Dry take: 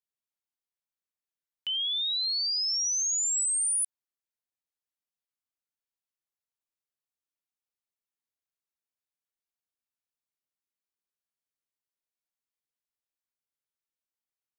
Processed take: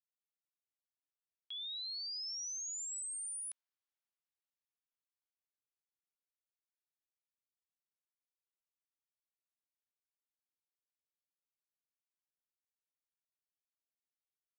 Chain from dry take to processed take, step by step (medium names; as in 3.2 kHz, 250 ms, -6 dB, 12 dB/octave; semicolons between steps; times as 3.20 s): Doppler pass-by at 3.49 s, 34 m/s, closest 18 m; band-pass 630–4500 Hz